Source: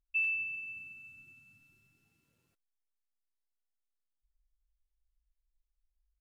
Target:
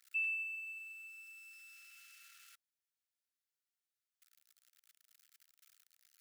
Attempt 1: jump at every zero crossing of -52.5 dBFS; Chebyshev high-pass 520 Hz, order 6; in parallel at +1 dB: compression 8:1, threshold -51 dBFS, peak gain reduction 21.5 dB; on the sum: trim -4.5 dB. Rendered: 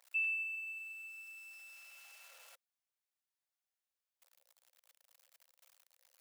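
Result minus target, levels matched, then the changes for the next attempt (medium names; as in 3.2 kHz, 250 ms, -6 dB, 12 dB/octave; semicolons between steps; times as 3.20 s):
compression: peak gain reduction -6.5 dB; 1 kHz band +3.5 dB
change: Chebyshev high-pass 1.3 kHz, order 6; change: compression 8:1, threshold -59.5 dBFS, peak gain reduction 28 dB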